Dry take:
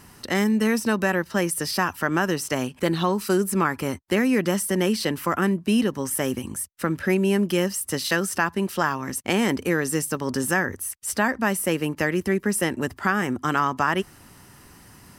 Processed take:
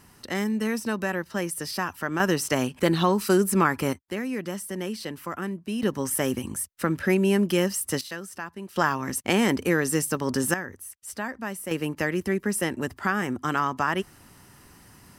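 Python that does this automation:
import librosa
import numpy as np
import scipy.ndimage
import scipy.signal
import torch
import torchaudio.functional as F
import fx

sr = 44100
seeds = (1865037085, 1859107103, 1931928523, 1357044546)

y = fx.gain(x, sr, db=fx.steps((0.0, -5.5), (2.2, 1.0), (3.93, -9.5), (5.83, -0.5), (8.01, -13.0), (8.76, 0.0), (10.54, -10.0), (11.71, -3.0)))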